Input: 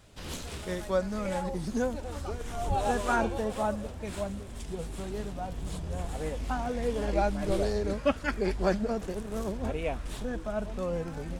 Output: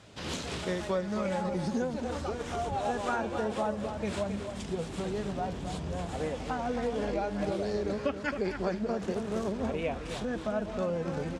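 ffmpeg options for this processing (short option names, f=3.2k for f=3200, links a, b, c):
-filter_complex "[0:a]acompressor=threshold=-32dB:ratio=10,highpass=100,lowpass=6.7k,asplit=2[a][b];[b]adelay=268.2,volume=-8dB,highshelf=f=4k:g=-6.04[c];[a][c]amix=inputs=2:normalize=0,volume=5dB"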